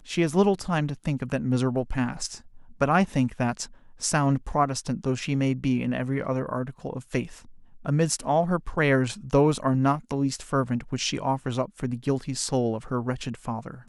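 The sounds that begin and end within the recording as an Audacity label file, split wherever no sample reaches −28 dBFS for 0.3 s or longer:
2.810000	3.640000	sound
4.030000	7.230000	sound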